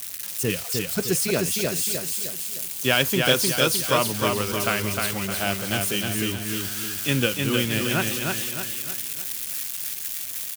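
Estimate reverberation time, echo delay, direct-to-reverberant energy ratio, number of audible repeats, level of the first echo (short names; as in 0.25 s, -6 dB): none, 0.307 s, none, 5, -3.5 dB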